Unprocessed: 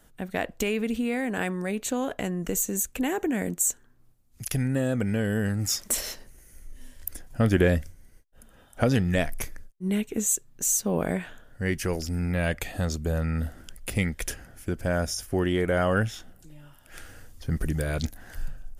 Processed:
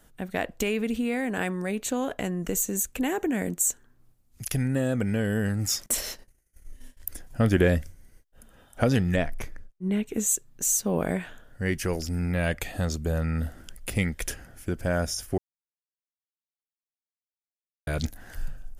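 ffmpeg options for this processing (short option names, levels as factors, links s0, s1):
-filter_complex "[0:a]asettb=1/sr,asplit=3[s0][s1][s2];[s0]atrim=end=5.864[s3];[s1]atrim=start=5.86:end=7.08,asetpts=PTS-STARTPTS,afade=t=in:d=0.004:c=qsin,afade=t=out:st=1.216:d=0.004:c=qsin,agate=range=0.0224:threshold=0.0112:ratio=3:release=100:detection=peak[s4];[s2]atrim=start=7.076[s5];[s3][s4]acrossfade=d=0.004:c1=hsin:c2=qsin[s6];[s6][s5]acrossfade=d=0.004:c1=qsin:c2=hsin,asettb=1/sr,asplit=3[s7][s8][s9];[s7]atrim=end=9.164[s10];[s8]atrim=start=9.16:end=10.06,asetpts=PTS-STARTPTS,afade=t=in:d=0.004:c=qsin,afade=t=out:st=0.896:d=0.004:c=qsin,lowpass=f=2500:p=1[s11];[s9]atrim=start=10.056[s12];[s10][s11]acrossfade=d=0.004:c1=hsin:c2=qsin[s13];[s13][s12]acrossfade=d=0.004:c1=qsin:c2=hsin,asplit=3[s14][s15][s16];[s14]atrim=end=15.38,asetpts=PTS-STARTPTS,afade=t=out:st=15.376:d=0.004:c=hsin[s17];[s15]atrim=start=15.38:end=17.87,asetpts=PTS-STARTPTS,volume=0[s18];[s16]atrim=start=17.87,asetpts=PTS-STARTPTS,afade=t=in:d=0.004:c=hsin[s19];[s17][s18][s19]concat=n=3:v=0:a=1"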